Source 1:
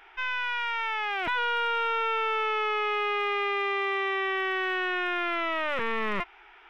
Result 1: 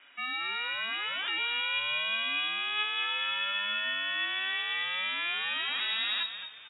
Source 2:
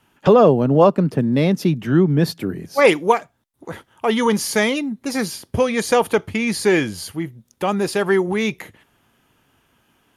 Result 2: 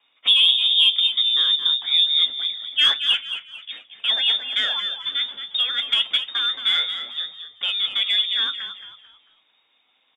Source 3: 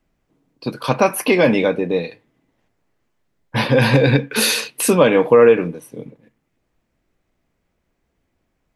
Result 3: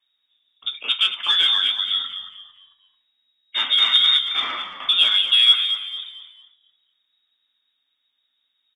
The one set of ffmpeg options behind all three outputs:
ffmpeg -i in.wav -filter_complex "[0:a]lowshelf=frequency=160:gain=3,lowpass=frequency=3200:width_type=q:width=0.5098,lowpass=frequency=3200:width_type=q:width=0.6013,lowpass=frequency=3200:width_type=q:width=0.9,lowpass=frequency=3200:width_type=q:width=2.563,afreqshift=-3800,equalizer=frequency=260:width=2.6:gain=13,acrossover=split=440|2600[link_01][link_02][link_03];[link_01]acompressor=threshold=-52dB:ratio=6[link_04];[link_02]asoftclip=type=tanh:threshold=-17dB[link_05];[link_04][link_05][link_03]amix=inputs=3:normalize=0,flanger=delay=7:depth=2.3:regen=68:speed=0.38:shape=sinusoidal,bandreject=frequency=60:width_type=h:width=6,bandreject=frequency=120:width_type=h:width=6,bandreject=frequency=180:width_type=h:width=6,bandreject=frequency=240:width_type=h:width=6,bandreject=frequency=300:width_type=h:width=6,asplit=2[link_06][link_07];[link_07]asplit=4[link_08][link_09][link_10][link_11];[link_08]adelay=223,afreqshift=-68,volume=-10dB[link_12];[link_09]adelay=446,afreqshift=-136,volume=-19.4dB[link_13];[link_10]adelay=669,afreqshift=-204,volume=-28.7dB[link_14];[link_11]adelay=892,afreqshift=-272,volume=-38.1dB[link_15];[link_12][link_13][link_14][link_15]amix=inputs=4:normalize=0[link_16];[link_06][link_16]amix=inputs=2:normalize=0" out.wav

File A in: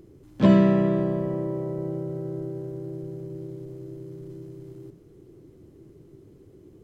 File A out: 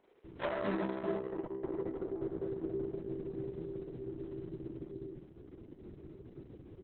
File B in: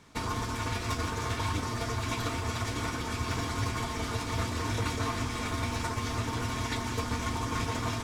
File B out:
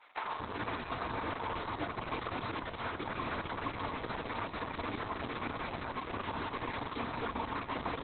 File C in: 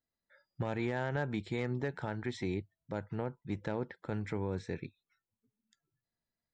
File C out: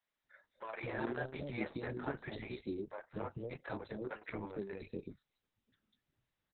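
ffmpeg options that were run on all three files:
ffmpeg -i in.wav -filter_complex "[0:a]acrossover=split=520|3700[link_01][link_02][link_03];[link_03]adelay=200[link_04];[link_01]adelay=240[link_05];[link_05][link_02][link_04]amix=inputs=3:normalize=0,acrossover=split=260|1700[link_06][link_07][link_08];[link_06]acompressor=threshold=-44dB:ratio=6[link_09];[link_07]aeval=exprs='0.168*(cos(1*acos(clip(val(0)/0.168,-1,1)))-cos(1*PI/2))+0.00106*(cos(2*acos(clip(val(0)/0.168,-1,1)))-cos(2*PI/2))+0.00473*(cos(6*acos(clip(val(0)/0.168,-1,1)))-cos(6*PI/2))+0.00188*(cos(8*acos(clip(val(0)/0.168,-1,1)))-cos(8*PI/2))':channel_layout=same[link_10];[link_08]asoftclip=type=tanh:threshold=-39dB[link_11];[link_09][link_10][link_11]amix=inputs=3:normalize=0,flanger=delay=9.6:depth=5.9:regen=-24:speed=1.6:shape=sinusoidal,acrossover=split=280|990[link_12][link_13][link_14];[link_12]acompressor=threshold=-48dB:ratio=4[link_15];[link_13]acompressor=threshold=-39dB:ratio=4[link_16];[link_14]acompressor=threshold=-46dB:ratio=4[link_17];[link_15][link_16][link_17]amix=inputs=3:normalize=0,volume=5.5dB" -ar 48000 -c:a libopus -b:a 6k out.opus

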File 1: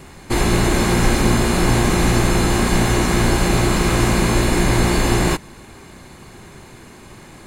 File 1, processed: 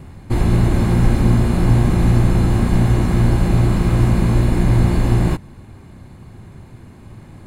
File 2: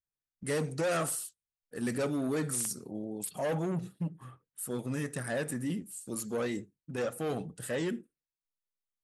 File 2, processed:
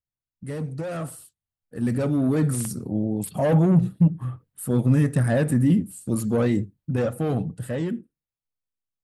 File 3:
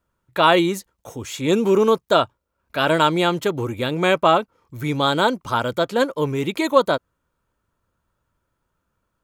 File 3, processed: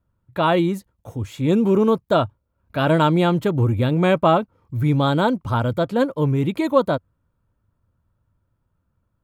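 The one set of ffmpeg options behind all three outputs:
ffmpeg -i in.wav -af "tiltshelf=frequency=710:gain=6.5,dynaudnorm=framelen=330:gausssize=13:maxgain=12.5dB,equalizer=frequency=100:width_type=o:width=0.67:gain=7,equalizer=frequency=400:width_type=o:width=0.67:gain=-5,equalizer=frequency=6300:width_type=o:width=0.67:gain=-5,volume=-2dB" out.wav

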